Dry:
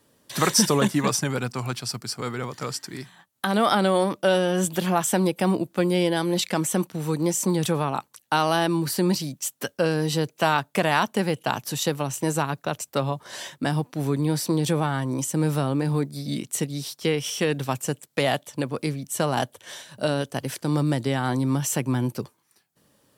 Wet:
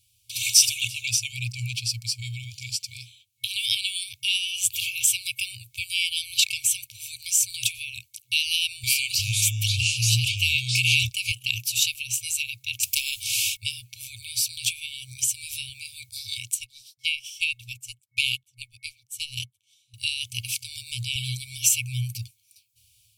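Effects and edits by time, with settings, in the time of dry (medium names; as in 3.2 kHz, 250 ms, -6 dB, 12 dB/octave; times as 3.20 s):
0.82–3.45 s: treble shelf 6.1 kHz -6.5 dB
8.48–11.32 s: ever faster or slower copies 355 ms, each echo -4 st, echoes 2
12.83–13.57 s: spectrum-flattening compressor 4:1
16.54–19.94 s: upward expansion 2.5:1, over -39 dBFS
21.15–21.69 s: comb 6.6 ms, depth 87%
whole clip: FFT band-reject 120–2200 Hz; dynamic bell 2.7 kHz, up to +7 dB, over -51 dBFS, Q 6.9; level rider gain up to 5 dB; trim +1.5 dB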